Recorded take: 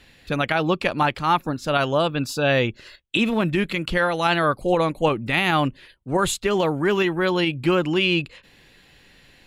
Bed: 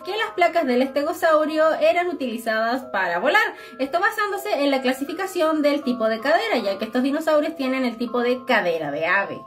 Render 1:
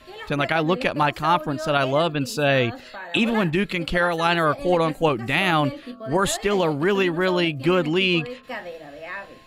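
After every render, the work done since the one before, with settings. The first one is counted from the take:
mix in bed −14 dB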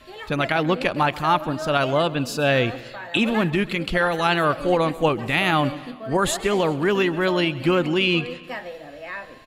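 repeating echo 133 ms, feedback 48%, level −19.5 dB
feedback echo with a swinging delay time 191 ms, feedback 45%, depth 68 cents, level −23.5 dB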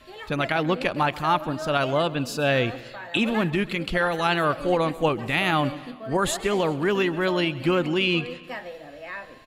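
level −2.5 dB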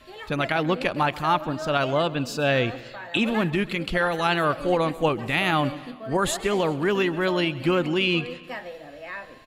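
0:01.35–0:03.24: parametric band 11,000 Hz −10 dB 0.27 octaves

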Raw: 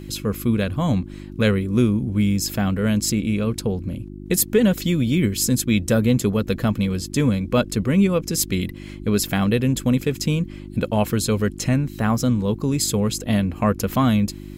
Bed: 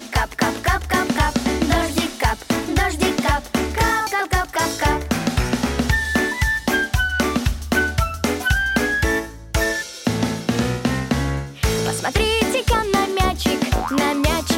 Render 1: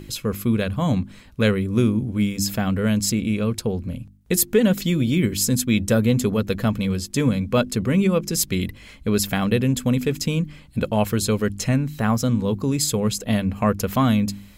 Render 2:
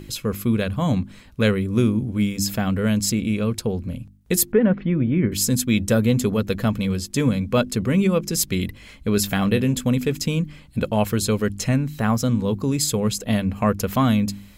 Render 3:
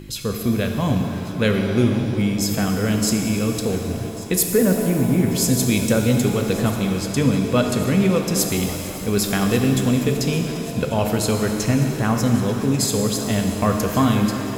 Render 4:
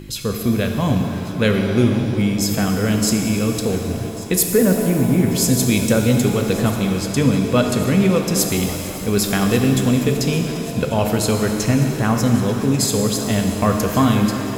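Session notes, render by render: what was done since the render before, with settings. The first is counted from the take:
hum removal 50 Hz, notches 7
0:04.52–0:05.32: low-pass filter 2,000 Hz 24 dB per octave; 0:09.15–0:09.81: double-tracking delay 20 ms −11 dB
feedback echo with a high-pass in the loop 1,140 ms, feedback 75%, level −17.5 dB; reverb with rising layers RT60 2.9 s, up +7 semitones, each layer −8 dB, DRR 3.5 dB
level +2 dB

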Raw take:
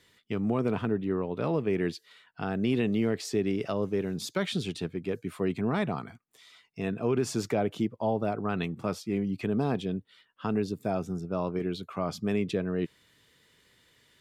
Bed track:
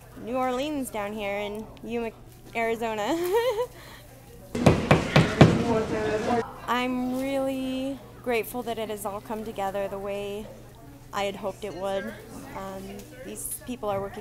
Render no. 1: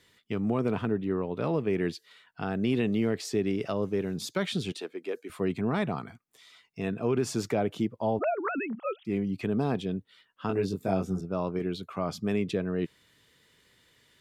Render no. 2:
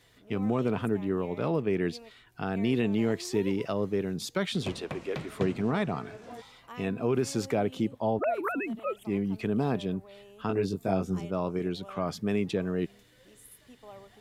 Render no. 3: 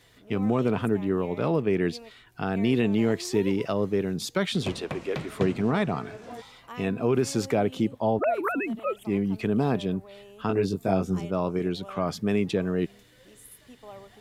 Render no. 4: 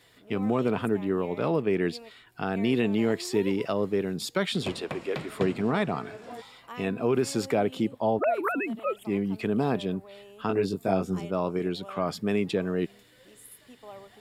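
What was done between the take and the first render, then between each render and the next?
0:04.72–0:05.30: high-pass filter 330 Hz 24 dB per octave; 0:08.19–0:09.05: three sine waves on the formant tracks; 0:10.47–0:11.21: double-tracking delay 21 ms −3 dB
mix in bed track −19.5 dB
level +3.5 dB
low-shelf EQ 110 Hz −10 dB; notch filter 6,100 Hz, Q 7.9

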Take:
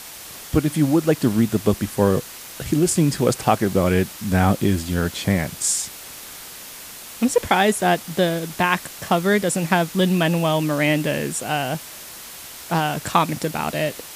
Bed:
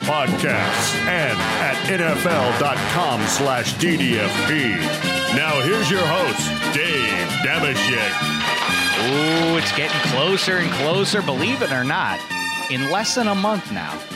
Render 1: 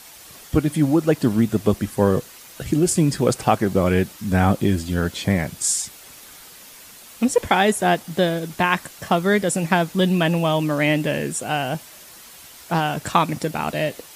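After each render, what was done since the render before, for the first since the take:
broadband denoise 7 dB, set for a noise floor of −38 dBFS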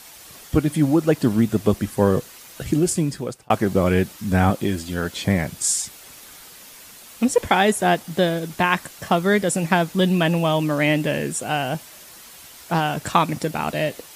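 0:02.75–0:03.50: fade out
0:04.50–0:05.16: low-shelf EQ 230 Hz −7.5 dB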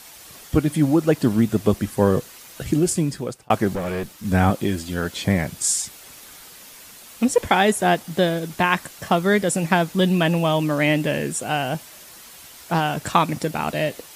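0:03.75–0:04.25: tube saturation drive 22 dB, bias 0.65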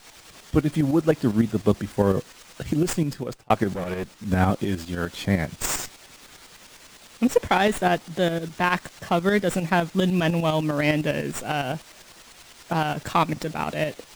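shaped tremolo saw up 9.9 Hz, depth 60%
windowed peak hold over 3 samples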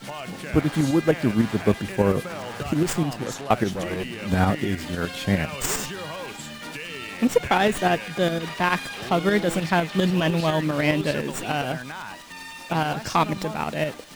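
mix in bed −15.5 dB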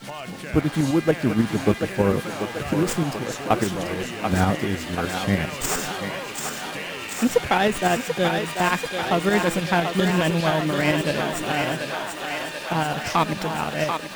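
feedback echo with a high-pass in the loop 737 ms, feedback 78%, high-pass 440 Hz, level −5 dB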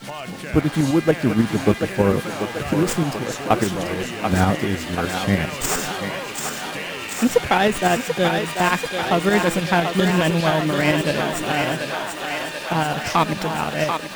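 level +2.5 dB

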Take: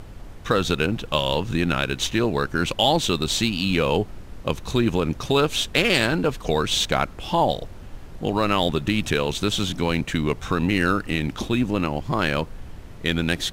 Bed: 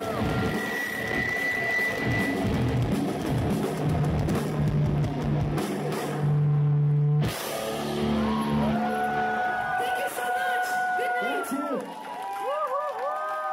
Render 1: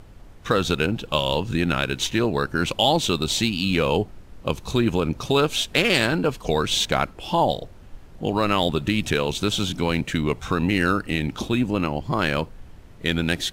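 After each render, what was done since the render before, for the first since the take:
noise reduction from a noise print 6 dB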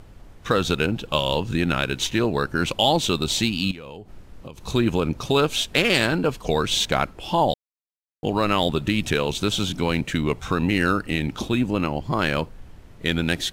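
0:03.71–0:04.61: downward compressor 16 to 1, threshold −33 dBFS
0:07.54–0:08.23: silence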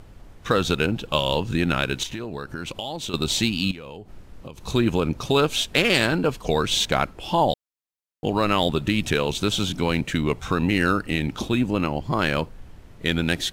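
0:02.03–0:03.14: downward compressor 5 to 1, threshold −28 dBFS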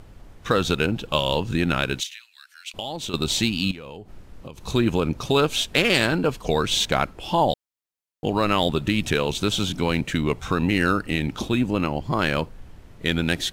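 0:02.00–0:02.74: inverse Chebyshev high-pass filter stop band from 590 Hz, stop band 60 dB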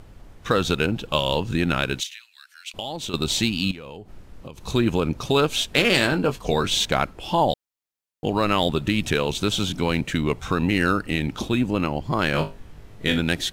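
0:05.74–0:06.71: double-tracking delay 21 ms −9.5 dB
0:12.32–0:13.19: flutter between parallel walls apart 3.4 metres, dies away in 0.25 s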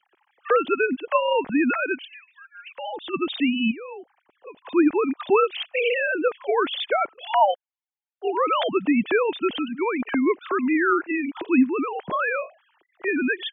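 three sine waves on the formant tracks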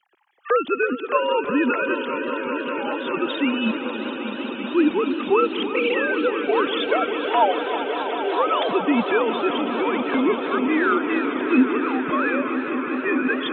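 on a send: echo that builds up and dies away 196 ms, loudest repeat 5, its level −13 dB
on the sum: feedback echo with a swinging delay time 322 ms, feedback 79%, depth 82 cents, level −13 dB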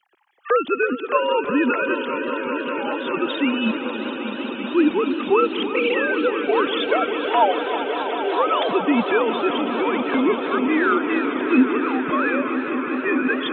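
level +1 dB

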